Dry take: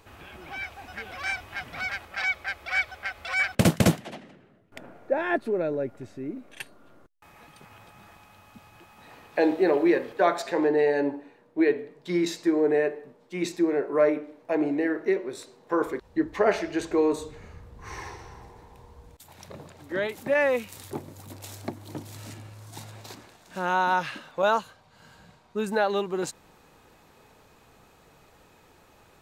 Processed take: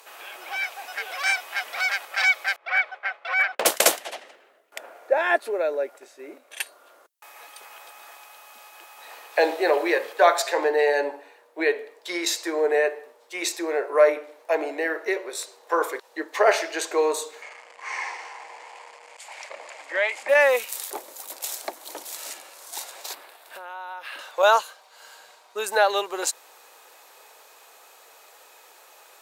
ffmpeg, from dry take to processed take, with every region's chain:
ffmpeg -i in.wav -filter_complex "[0:a]asettb=1/sr,asplit=3[link_01][link_02][link_03];[link_01]atrim=end=2.564[link_04];[link_02]atrim=start=2.56:end=3.66,asetpts=PTS-STARTPTS,afade=type=in:duration=0.004:curve=qsin,afade=type=out:start_time=1.096:duration=0.004:curve=qsin,agate=range=-33dB:threshold=-42dB:ratio=3:release=100:detection=peak,lowpass=2000,asoftclip=type=hard:threshold=-17.5dB[link_05];[link_03]atrim=start=3.656[link_06];[link_04][link_05]acrossfade=duration=0.004:curve1=hsin:curve2=qsin[link_07];[link_07][link_06]acrossfade=duration=0.004:curve1=qsin:curve2=hsin,asettb=1/sr,asplit=3[link_08][link_09][link_10];[link_08]atrim=end=5.984[link_11];[link_09]atrim=start=5.98:end=6.51,asetpts=PTS-STARTPTS,afade=type=in:duration=0.004:curve=qsin,afade=type=out:start_time=0.526:duration=0.004:curve=qsin,agate=range=-6dB:threshold=-38dB:ratio=16:release=100:detection=peak,asplit=2[link_12][link_13];[link_13]adelay=28,volume=-10.5dB[link_14];[link_12][link_14]amix=inputs=2:normalize=0,atrim=end_sample=23373[link_15];[link_10]atrim=start=6.506[link_16];[link_11][link_15]acrossfade=duration=0.004:curve1=hsin:curve2=qsin[link_17];[link_17][link_16]acrossfade=duration=0.004:curve1=qsin:curve2=hsin,asettb=1/sr,asplit=3[link_18][link_19][link_20];[link_18]atrim=end=17.424[link_21];[link_19]atrim=start=17.42:end=20.29,asetpts=PTS-STARTPTS,afade=type=in:duration=0.004:curve=qsin,afade=type=out:start_time=2.866:duration=0.004:curve=qsin,aeval=exprs='val(0)+0.5*0.00562*sgn(val(0))':channel_layout=same,highpass=250,equalizer=frequency=280:width_type=q:width=4:gain=-7,equalizer=frequency=410:width_type=q:width=4:gain=-9,equalizer=frequency=1400:width_type=q:width=4:gain=-4,equalizer=frequency=2200:width_type=q:width=4:gain=8,equalizer=frequency=3800:width_type=q:width=4:gain=-9,equalizer=frequency=5800:width_type=q:width=4:gain=-9,lowpass=frequency=6900:width=0.5412,lowpass=frequency=6900:width=1.3066[link_22];[link_20]atrim=start=20.286[link_23];[link_21][link_22]acrossfade=duration=0.004:curve1=hsin:curve2=qsin[link_24];[link_24][link_23]acrossfade=duration=0.004:curve1=qsin:curve2=hsin,asettb=1/sr,asplit=3[link_25][link_26][link_27];[link_25]atrim=end=23.134[link_28];[link_26]atrim=start=23.13:end=24.19,asetpts=PTS-STARTPTS,afade=type=in:duration=0.004:curve=qsin,afade=type=out:start_time=1.056:duration=0.004:curve=qsin,equalizer=frequency=6400:width=1.5:gain=-14.5,acompressor=threshold=-38dB:ratio=10:attack=3.2:release=140:knee=1:detection=peak[link_29];[link_27]atrim=start=24.186[link_30];[link_28][link_29]acrossfade=duration=0.004:curve1=hsin:curve2=qsin[link_31];[link_31][link_30]acrossfade=duration=0.004:curve1=qsin:curve2=hsin,highpass=frequency=490:width=0.5412,highpass=frequency=490:width=1.3066,aemphasis=mode=production:type=cd,volume=6dB" out.wav

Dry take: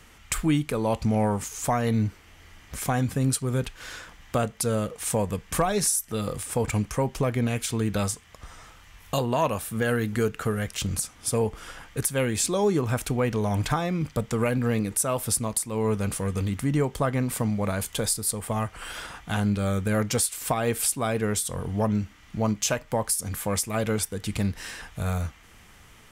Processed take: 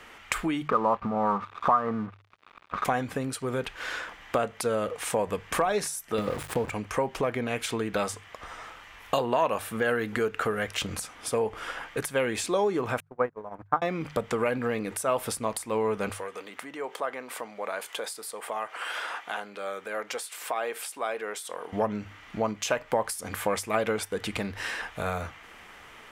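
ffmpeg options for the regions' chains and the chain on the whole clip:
ffmpeg -i in.wav -filter_complex "[0:a]asettb=1/sr,asplit=3[link_01][link_02][link_03];[link_01]atrim=end=0.684[link_04];[link_02]atrim=start=0.68:end=2.85,asetpts=PTS-STARTPTS,afade=type=in:duration=0.004:curve=qsin,afade=type=out:start_time=2.166:duration=0.004:curve=qsin,lowpass=frequency=1200:width_type=q:width=9.6,equalizer=frequency=190:width_type=o:width=0.43:gain=12,aeval=exprs='sgn(val(0))*max(abs(val(0))-0.00891,0)':channel_layout=same[link_05];[link_03]atrim=start=2.846[link_06];[link_04][link_05]acrossfade=duration=0.004:curve1=hsin:curve2=qsin[link_07];[link_07][link_06]acrossfade=duration=0.004:curve1=qsin:curve2=hsin,asettb=1/sr,asplit=3[link_08][link_09][link_10];[link_08]atrim=end=6.184[link_11];[link_09]atrim=start=6.18:end=6.7,asetpts=PTS-STARTPTS,afade=type=in:duration=0.004:curve=qsin,afade=type=out:start_time=0.516:duration=0.004:curve=qsin,lowshelf=frequency=420:gain=11.5,aeval=exprs='val(0)*gte(abs(val(0)),0.0316)':channel_layout=same[link_12];[link_10]atrim=start=6.696[link_13];[link_11][link_12]acrossfade=duration=0.004:curve1=hsin:curve2=qsin[link_14];[link_14][link_13]acrossfade=duration=0.004:curve1=qsin:curve2=hsin,asettb=1/sr,asplit=3[link_15][link_16][link_17];[link_15]atrim=end=13.004[link_18];[link_16]atrim=start=13:end=13.82,asetpts=PTS-STARTPTS,afade=type=in:duration=0.004:curve=qsin,afade=type=out:start_time=0.816:duration=0.004:curve=qsin,aeval=exprs='val(0)+0.5*0.02*sgn(val(0))':channel_layout=same,highshelf=frequency=2100:width_type=q:width=1.5:gain=-13,agate=range=-49dB:threshold=-21dB:ratio=16:release=100:detection=peak[link_19];[link_17]atrim=start=13.816[link_20];[link_18][link_19]acrossfade=duration=0.004:curve1=hsin:curve2=qsin[link_21];[link_21][link_20]acrossfade=duration=0.004:curve1=qsin:curve2=hsin,asettb=1/sr,asplit=3[link_22][link_23][link_24];[link_22]atrim=end=16.104[link_25];[link_23]atrim=start=16.1:end=21.73,asetpts=PTS-STARTPTS,afade=type=in:duration=0.004:curve=qsin,afade=type=out:start_time=5.626:duration=0.004:curve=qsin,acompressor=threshold=-35dB:ratio=2.5:attack=3.2:release=140:knee=1:detection=peak,highpass=440[link_26];[link_24]atrim=start=21.726[link_27];[link_25][link_26]acrossfade=duration=0.004:curve1=hsin:curve2=qsin[link_28];[link_28][link_27]acrossfade=duration=0.004:curve1=qsin:curve2=hsin,bandreject=frequency=50:width_type=h:width=6,bandreject=frequency=100:width_type=h:width=6,bandreject=frequency=150:width_type=h:width=6,acompressor=threshold=-27dB:ratio=6,bass=frequency=250:gain=-15,treble=frequency=4000:gain=-12,volume=7.5dB" out.wav

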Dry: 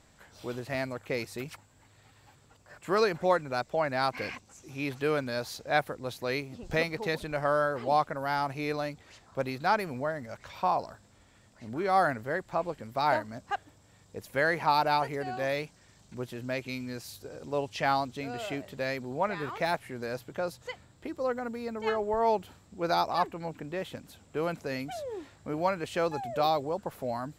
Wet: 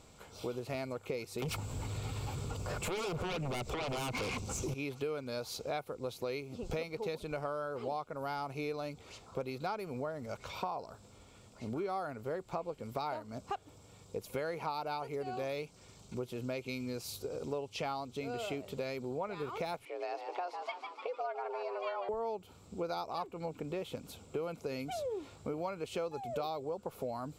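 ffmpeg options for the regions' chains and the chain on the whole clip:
ffmpeg -i in.wav -filter_complex "[0:a]asettb=1/sr,asplit=3[link_01][link_02][link_03];[link_01]atrim=end=1.424[link_04];[link_02]atrim=start=1.42:end=4.74,asetpts=PTS-STARTPTS,afade=type=in:duration=0.004:curve=qsin,afade=type=out:start_time=3.316:duration=0.004:curve=qsin,lowshelf=frequency=190:gain=11,acompressor=threshold=-39dB:ratio=3:attack=3.2:release=140:knee=1:detection=peak,aeval=exprs='0.0447*sin(PI/2*4.47*val(0)/0.0447)':channel_layout=same[link_05];[link_03]atrim=start=4.736[link_06];[link_04][link_05]acrossfade=duration=0.004:curve1=hsin:curve2=qsin[link_07];[link_07][link_06]acrossfade=duration=0.004:curve1=qsin:curve2=hsin,asettb=1/sr,asplit=3[link_08][link_09][link_10];[link_08]atrim=end=19.854[link_11];[link_09]atrim=start=19.85:end=22.09,asetpts=PTS-STARTPTS,afade=type=in:duration=0.004:curve=qsin,afade=type=out:start_time=2.236:duration=0.004:curve=qsin,asplit=8[link_12][link_13][link_14][link_15][link_16][link_17][link_18][link_19];[link_13]adelay=149,afreqshift=97,volume=-9.5dB[link_20];[link_14]adelay=298,afreqshift=194,volume=-14.2dB[link_21];[link_15]adelay=447,afreqshift=291,volume=-19dB[link_22];[link_16]adelay=596,afreqshift=388,volume=-23.7dB[link_23];[link_17]adelay=745,afreqshift=485,volume=-28.4dB[link_24];[link_18]adelay=894,afreqshift=582,volume=-33.2dB[link_25];[link_19]adelay=1043,afreqshift=679,volume=-37.9dB[link_26];[link_12][link_20][link_21][link_22][link_23][link_24][link_25][link_26]amix=inputs=8:normalize=0,atrim=end_sample=98784,afreqshift=180,highpass=520,lowpass=3900[link_27];[link_10]atrim=start=22.086[link_28];[link_11][link_27]acrossfade=duration=0.004:curve1=hsin:curve2=qsin[link_29];[link_29][link_28]acrossfade=duration=0.004:curve1=qsin:curve2=hsin,superequalizer=7b=1.78:11b=0.316,acompressor=threshold=-38dB:ratio=6,volume=2.5dB" out.wav

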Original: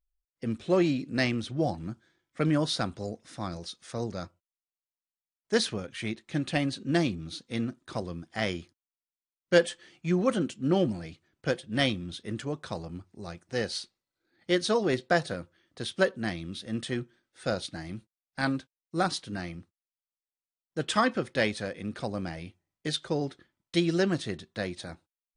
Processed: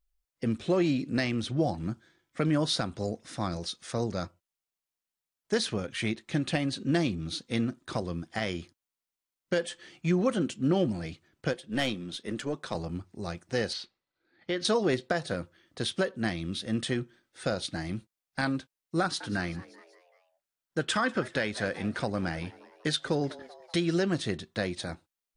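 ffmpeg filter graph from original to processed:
ffmpeg -i in.wav -filter_complex "[0:a]asettb=1/sr,asplit=3[link_01][link_02][link_03];[link_01]atrim=end=11.534[link_04];[link_02]atrim=start=11.53:end=12.75,asetpts=PTS-STARTPTS,afade=type=in:duration=0.004:curve=qsin,afade=type=out:start_time=1.216:duration=0.004:curve=qsin,highpass=190,aeval=exprs='(tanh(8.91*val(0)+0.5)-tanh(0.5))/8.91':channel_layout=same[link_05];[link_03]atrim=start=12.746[link_06];[link_04][link_05]acrossfade=duration=0.004:curve1=hsin:curve2=qsin[link_07];[link_07][link_06]acrossfade=duration=0.004:curve1=qsin:curve2=hsin,asettb=1/sr,asplit=3[link_08][link_09][link_10];[link_08]atrim=end=13.734[link_11];[link_09]atrim=start=13.73:end=14.65,asetpts=PTS-STARTPTS,afade=type=in:duration=0.004:curve=qsin,afade=type=out:start_time=0.916:duration=0.004:curve=qsin,lowshelf=frequency=330:gain=-5,acompressor=threshold=-32dB:ratio=2.5:attack=3.2:release=140:knee=1:detection=peak,lowpass=3800[link_12];[link_10]atrim=start=14.646[link_13];[link_11][link_12]acrossfade=duration=0.004:curve1=hsin:curve2=qsin[link_14];[link_14][link_13]acrossfade=duration=0.004:curve1=qsin:curve2=hsin,asettb=1/sr,asplit=3[link_15][link_16][link_17];[link_15]atrim=end=19.014[link_18];[link_16]atrim=start=19.01:end=23.94,asetpts=PTS-STARTPTS,afade=type=in:duration=0.004:curve=qsin,afade=type=out:start_time=4.926:duration=0.004:curve=qsin,equalizer=frequency=1500:width_type=o:width=0.46:gain=6,asplit=5[link_19][link_20][link_21][link_22][link_23];[link_20]adelay=192,afreqshift=120,volume=-22dB[link_24];[link_21]adelay=384,afreqshift=240,volume=-27.2dB[link_25];[link_22]adelay=576,afreqshift=360,volume=-32.4dB[link_26];[link_23]adelay=768,afreqshift=480,volume=-37.6dB[link_27];[link_19][link_24][link_25][link_26][link_27]amix=inputs=5:normalize=0,atrim=end_sample=217413[link_28];[link_17]atrim=start=23.936[link_29];[link_18][link_28]acrossfade=duration=0.004:curve1=hsin:curve2=qsin[link_30];[link_30][link_29]acrossfade=duration=0.004:curve1=qsin:curve2=hsin,acompressor=threshold=-32dB:ratio=1.5,alimiter=limit=-20.5dB:level=0:latency=1:release=212,volume=4.5dB" out.wav

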